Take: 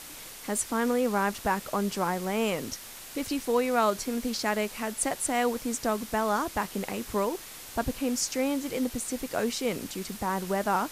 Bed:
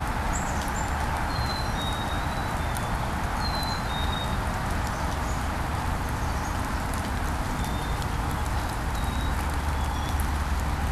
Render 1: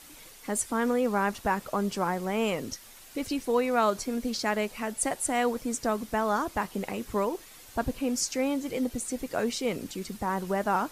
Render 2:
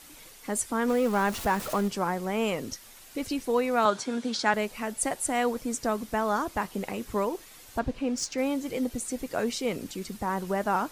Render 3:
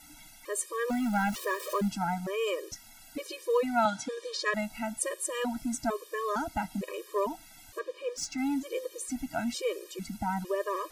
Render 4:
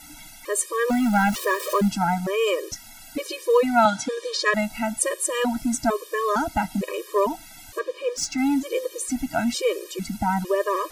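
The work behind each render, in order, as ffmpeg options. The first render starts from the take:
-af "afftdn=nr=8:nf=-44"
-filter_complex "[0:a]asettb=1/sr,asplit=3[a][b][c];[a]atrim=end=0.884[d];[b]atrim=start=0.88:end=1.88,asetpts=PTS-STARTPTS,afade=t=in:d=0.004:c=qsin,afade=t=out:st=0.996:d=0.004:c=qsin,aeval=exprs='val(0)+0.5*0.0211*sgn(val(0))':c=same[e];[c]atrim=start=1.876[f];[d][e]acrossfade=d=0.004:c1=hsin:c2=qsin[g];[g][f]acrossfade=d=0.004:c1=qsin:c2=hsin,asettb=1/sr,asplit=3[h][i][j];[h]atrim=end=3.854[k];[i]atrim=start=3.85:end=4.54,asetpts=PTS-STARTPTS,afade=t=in:d=0.004:c=qsin,afade=t=out:st=0.686:d=0.004:c=qsin,highpass=f=120:w=0.5412,highpass=f=120:w=1.3066,equalizer=f=900:t=q:w=4:g=7,equalizer=f=1.5k:t=q:w=4:g=9,equalizer=f=3.5k:t=q:w=4:g=8,lowpass=f=9.1k:w=0.5412,lowpass=f=9.1k:w=1.3066[l];[j]atrim=start=4.536[m];[k][l]acrossfade=d=0.004:c1=hsin:c2=qsin[n];[n][m]acrossfade=d=0.004:c1=qsin:c2=hsin,asettb=1/sr,asplit=3[o][p][q];[o]atrim=end=7.794[r];[p]atrim=start=7.79:end=8.38,asetpts=PTS-STARTPTS,afade=t=in:d=0.004:c=qsin,afade=t=out:st=0.586:d=0.004:c=qsin,adynamicsmooth=sensitivity=3:basefreq=5.5k[s];[q]atrim=start=8.376[t];[r][s]acrossfade=d=0.004:c1=hsin:c2=qsin[u];[u][t]acrossfade=d=0.004:c1=qsin:c2=hsin"
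-af "afftfilt=real='re*gt(sin(2*PI*1.1*pts/sr)*(1-2*mod(floor(b*sr/1024/320),2)),0)':imag='im*gt(sin(2*PI*1.1*pts/sr)*(1-2*mod(floor(b*sr/1024/320),2)),0)':win_size=1024:overlap=0.75"
-af "volume=8.5dB"

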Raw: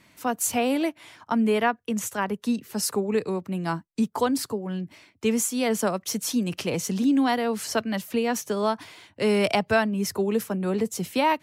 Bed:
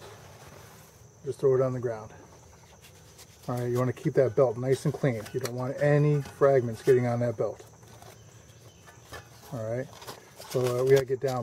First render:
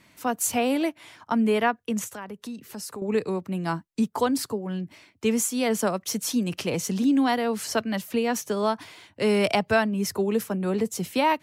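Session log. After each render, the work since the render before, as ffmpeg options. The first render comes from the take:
-filter_complex "[0:a]asettb=1/sr,asplit=3[a][b][c];[a]atrim=end=2.044[d];[b]atrim=start=2.04:end=3.02,asetpts=PTS-STARTPTS,afade=t=in:d=0.004:c=qsin,afade=t=out:st=0.976:d=0.004:c=qsin,acompressor=threshold=-36dB:ratio=3:attack=3.2:release=140:knee=1:detection=peak[e];[c]atrim=start=3.016[f];[d][e]acrossfade=d=0.004:c1=hsin:c2=qsin[g];[g][f]acrossfade=d=0.004:c1=qsin:c2=hsin"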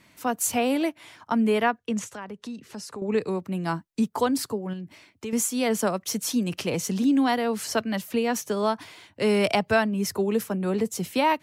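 -filter_complex "[0:a]asettb=1/sr,asplit=3[a][b][c];[a]atrim=end=1.784[d];[b]atrim=start=1.78:end=3.21,asetpts=PTS-STARTPTS,afade=t=in:d=0.004:c=qsin,afade=t=out:st=1.426:d=0.004:c=qsin,lowpass=7.5k[e];[c]atrim=start=3.206[f];[d][e]acrossfade=d=0.004:c1=hsin:c2=qsin[g];[g][f]acrossfade=d=0.004:c1=qsin:c2=hsin,asettb=1/sr,asplit=3[h][i][j];[h]atrim=end=4.734[k];[i]atrim=start=4.73:end=5.33,asetpts=PTS-STARTPTS,afade=t=in:d=0.004:c=qsin,afade=t=out:st=0.596:d=0.004:c=qsin,acompressor=threshold=-34dB:ratio=2.5:attack=3.2:release=140:knee=1:detection=peak[l];[j]atrim=start=5.326[m];[k][l]acrossfade=d=0.004:c1=hsin:c2=qsin[n];[n][m]acrossfade=d=0.004:c1=qsin:c2=hsin"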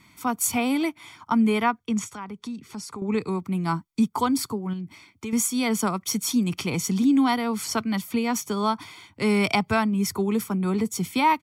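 -af "aecho=1:1:0.9:0.67"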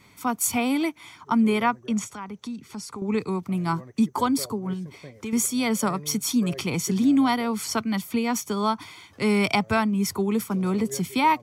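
-filter_complex "[1:a]volume=-17.5dB[a];[0:a][a]amix=inputs=2:normalize=0"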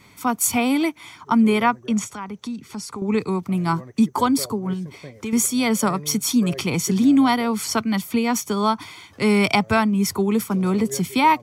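-af "volume=4dB"

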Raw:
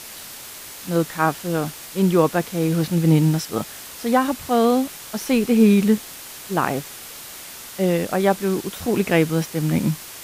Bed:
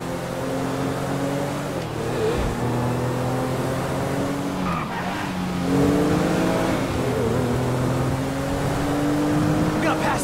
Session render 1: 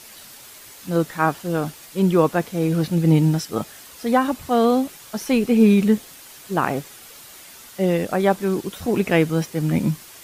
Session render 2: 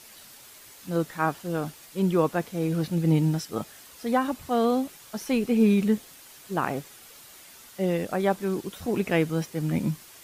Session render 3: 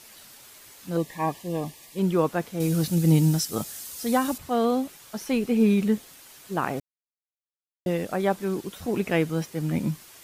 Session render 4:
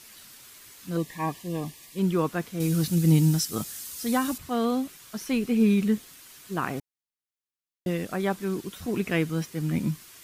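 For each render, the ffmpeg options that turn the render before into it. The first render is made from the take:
-af "afftdn=nr=7:nf=-38"
-af "volume=-6dB"
-filter_complex "[0:a]asettb=1/sr,asplit=3[a][b][c];[a]atrim=end=0.974[d];[b]atrim=start=0.97:end=1.99,asetpts=PTS-STARTPTS,afade=t=in:d=0.004:c=qsin,afade=t=out:st=1.016:d=0.004:c=qsin,asuperstop=centerf=1400:order=20:qfactor=3.3[e];[c]atrim=start=1.986[f];[d][e]acrossfade=d=0.004:c1=hsin:c2=qsin[g];[g][f]acrossfade=d=0.004:c1=qsin:c2=hsin,asettb=1/sr,asplit=3[h][i][j];[h]atrim=end=2.604[k];[i]atrim=start=2.6:end=4.38,asetpts=PTS-STARTPTS,afade=t=in:d=0.004:c=qsin,afade=t=out:st=1.776:d=0.004:c=qsin,bass=f=250:g=4,treble=f=4k:g=12[l];[j]atrim=start=4.376[m];[k][l]acrossfade=d=0.004:c1=hsin:c2=qsin[n];[n][m]acrossfade=d=0.004:c1=qsin:c2=hsin,asplit=3[o][p][q];[o]atrim=end=6.8,asetpts=PTS-STARTPTS,afade=t=out:st=6.796:d=0.004:c=hsin[r];[p]atrim=start=6.8:end=7.86,asetpts=PTS-STARTPTS,volume=0[s];[q]atrim=start=7.86,asetpts=PTS-STARTPTS,afade=t=in:d=0.004:c=hsin[t];[r][s][t]concat=n=3:v=0:a=1"
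-af "equalizer=f=590:w=1.5:g=-6.5,bandreject=f=850:w=12"

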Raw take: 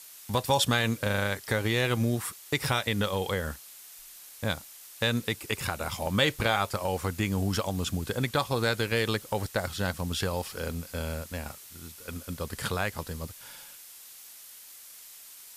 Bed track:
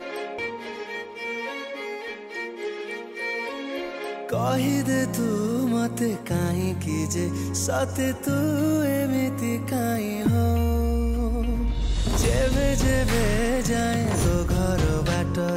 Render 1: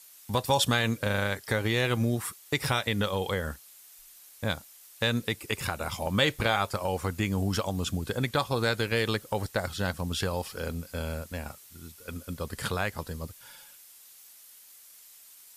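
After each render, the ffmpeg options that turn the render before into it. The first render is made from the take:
-af "afftdn=nr=6:nf=-49"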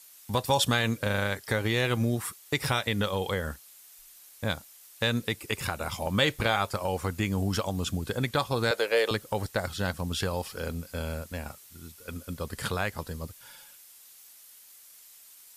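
-filter_complex "[0:a]asettb=1/sr,asplit=3[a][b][c];[a]atrim=end=8.714[d];[b]atrim=start=8.71:end=9.11,asetpts=PTS-STARTPTS,afade=t=in:d=0.004:c=qsin,afade=t=out:st=0.396:d=0.004:c=qsin,highpass=f=540:t=q:w=2.9[e];[c]atrim=start=9.106[f];[d][e]acrossfade=d=0.004:c1=hsin:c2=qsin[g];[g][f]acrossfade=d=0.004:c1=qsin:c2=hsin"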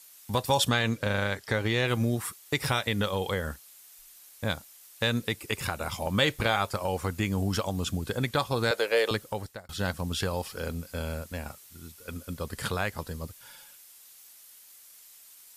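-filter_complex "[0:a]asettb=1/sr,asplit=3[a][b][c];[a]atrim=end=0.694[d];[b]atrim=start=0.69:end=1.88,asetpts=PTS-STARTPTS,afade=t=in:d=0.004:c=qsin,afade=t=out:st=1.186:d=0.004:c=qsin,acrossover=split=7500[e][f];[f]acompressor=threshold=-57dB:ratio=4:attack=1:release=60[g];[e][g]amix=inputs=2:normalize=0[h];[c]atrim=start=1.876[i];[d][h]acrossfade=d=0.004:c1=hsin:c2=qsin[j];[j][i]acrossfade=d=0.004:c1=qsin:c2=hsin,asplit=2[k][l];[k]atrim=end=9.69,asetpts=PTS-STARTPTS,afade=t=out:st=9.19:d=0.5[m];[l]atrim=start=9.69,asetpts=PTS-STARTPTS,afade=t=in:d=0.004:c=hsin[n];[m][n]concat=n=2:v=0:a=1"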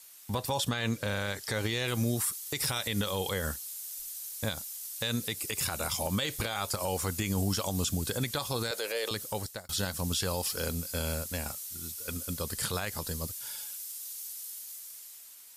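-filter_complex "[0:a]acrossover=split=4200[a][b];[b]dynaudnorm=f=300:g=7:m=12dB[c];[a][c]amix=inputs=2:normalize=0,alimiter=limit=-20.5dB:level=0:latency=1:release=58"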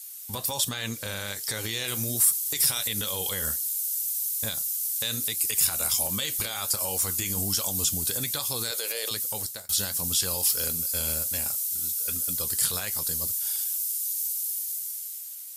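-af "crystalizer=i=4:c=0,flanger=delay=5.9:depth=7.6:regen=-70:speed=1.3:shape=triangular"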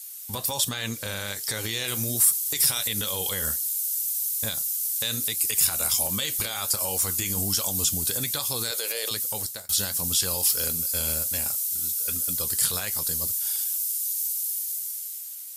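-af "volume=1.5dB"

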